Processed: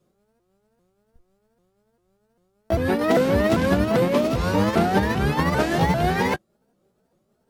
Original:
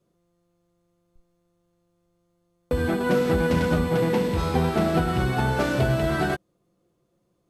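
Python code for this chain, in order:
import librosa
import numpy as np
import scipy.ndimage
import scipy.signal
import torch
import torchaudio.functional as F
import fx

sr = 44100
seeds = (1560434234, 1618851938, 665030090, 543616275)

y = fx.pitch_ramps(x, sr, semitones=5.5, every_ms=396)
y = y * 10.0 ** (3.5 / 20.0)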